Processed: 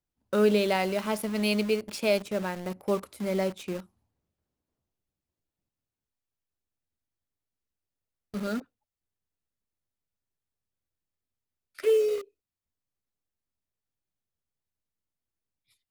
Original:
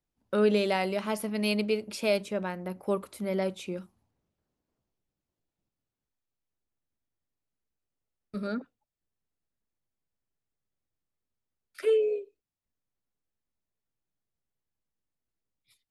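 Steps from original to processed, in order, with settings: peaking EQ 81 Hz +5.5 dB 0.54 oct; in parallel at -3.5 dB: word length cut 6-bit, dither none; on the sum: trim -3 dB

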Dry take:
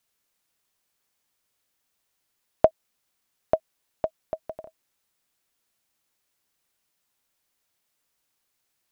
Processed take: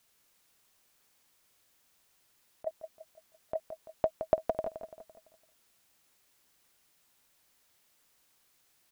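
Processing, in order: compressor with a negative ratio -26 dBFS, ratio -0.5; on a send: feedback delay 169 ms, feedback 45%, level -9.5 dB

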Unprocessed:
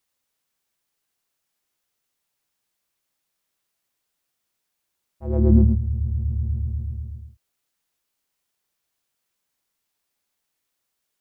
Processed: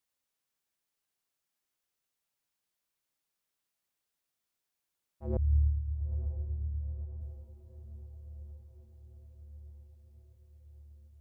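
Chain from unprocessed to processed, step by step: 5.37–7.21 s: inverse Chebyshev low-pass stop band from 510 Hz, stop band 80 dB; on a send: echo that smears into a reverb 961 ms, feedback 63%, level -15 dB; on the sum: trim -8 dB

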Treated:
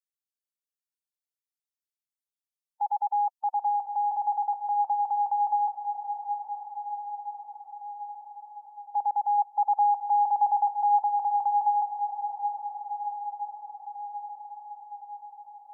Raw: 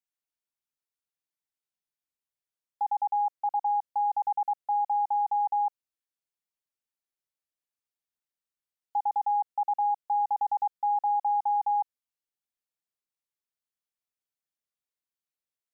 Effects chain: expander on every frequency bin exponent 2; 9.38–11.03 s: peaking EQ 830 Hz +3 dB; echo that smears into a reverb 997 ms, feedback 61%, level -7.5 dB; trim +2 dB

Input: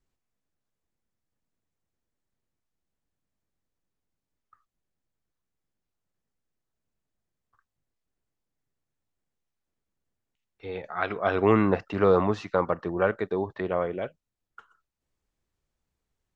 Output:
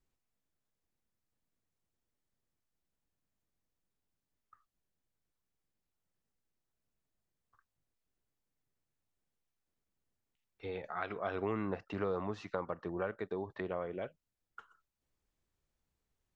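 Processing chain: compression 2.5:1, threshold -35 dBFS, peak gain reduction 13.5 dB; trim -3 dB

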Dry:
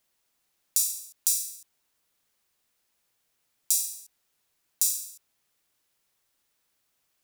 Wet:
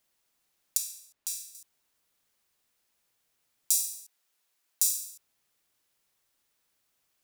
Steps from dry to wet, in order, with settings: 0.77–1.55 s: treble shelf 3.8 kHz -11 dB; 3.77–5.05 s: high-pass 530 Hz 6 dB/octave; trim -1 dB

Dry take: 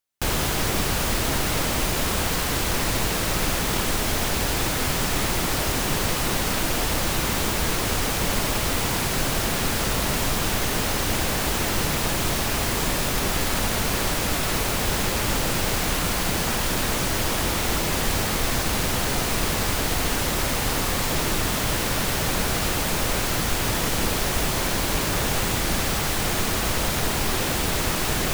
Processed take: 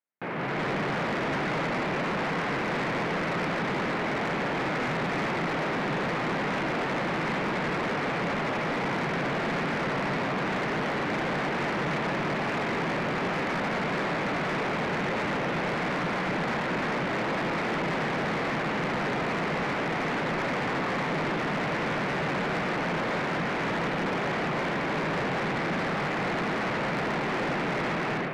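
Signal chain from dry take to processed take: elliptic band-pass 150–2200 Hz, stop band 40 dB; level rider gain up to 10 dB; saturation -20.5 dBFS, distortion -10 dB; trim -5 dB

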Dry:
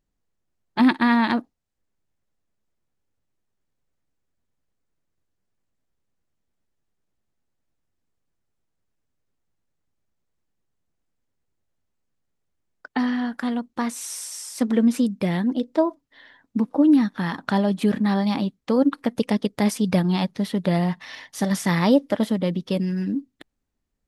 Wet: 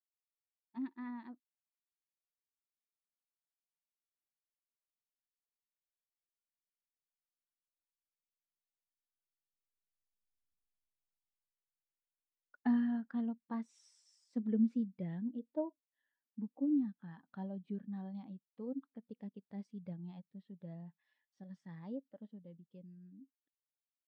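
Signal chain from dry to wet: Doppler pass-by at 10.48 s, 12 m/s, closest 5.9 m; low-pass 5.6 kHz 12 dB/octave; spectral contrast expander 1.5:1; trim +3 dB

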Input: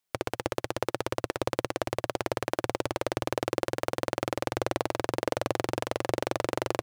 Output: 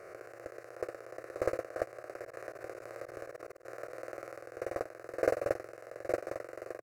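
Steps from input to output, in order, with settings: reverse spectral sustain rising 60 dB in 2.33 s; high-pass 380 Hz 6 dB/octave; gate -23 dBFS, range -30 dB; treble shelf 3 kHz -8 dB; 2.21–4.39 s: compressor with a negative ratio -55 dBFS, ratio -0.5; static phaser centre 900 Hz, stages 6; trim +12.5 dB

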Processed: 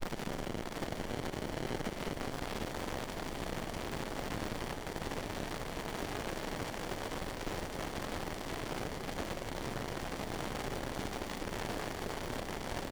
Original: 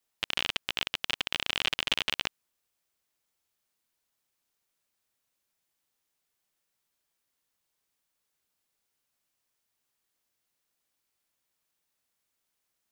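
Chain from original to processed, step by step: one-bit delta coder 32 kbps, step -19 dBFS; granulator; in parallel at -7 dB: Schmitt trigger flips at -30 dBFS; on the sum: peak limiter -17.5 dBFS, peak gain reduction 7 dB; on a send: delay 754 ms -15 dB; on the sum: sliding maximum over 33 samples; trim -4.5 dB

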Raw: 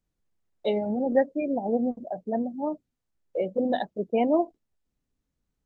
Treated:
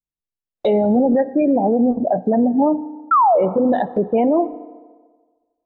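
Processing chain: low-pass that closes with the level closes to 1.6 kHz, closed at -25 dBFS; spectral noise reduction 16 dB; gate with hold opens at -40 dBFS; compression 3:1, threshold -28 dBFS, peak gain reduction 9 dB; painted sound fall, 3.11–3.40 s, 530–1400 Hz -25 dBFS; FDN reverb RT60 1.5 s, low-frequency decay 0.85×, high-frequency decay 0.65×, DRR 19 dB; loudness maximiser +27.5 dB; trim -8 dB

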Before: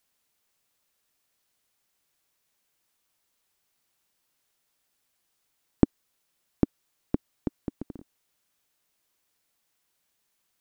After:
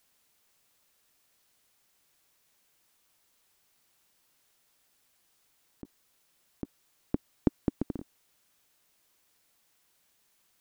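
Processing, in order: compressor with a negative ratio -26 dBFS, ratio -0.5

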